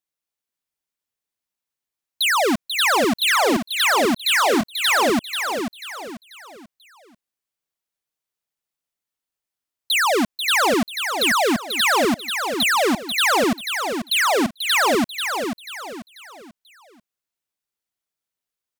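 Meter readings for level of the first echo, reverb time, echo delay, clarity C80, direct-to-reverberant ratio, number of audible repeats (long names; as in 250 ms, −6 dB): −6.5 dB, no reverb audible, 489 ms, no reverb audible, no reverb audible, 4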